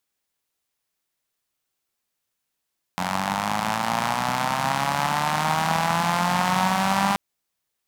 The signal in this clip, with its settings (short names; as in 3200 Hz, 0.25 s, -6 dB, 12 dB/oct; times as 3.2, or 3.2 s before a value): four-cylinder engine model, changing speed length 4.18 s, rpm 2700, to 6000, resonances 190/840 Hz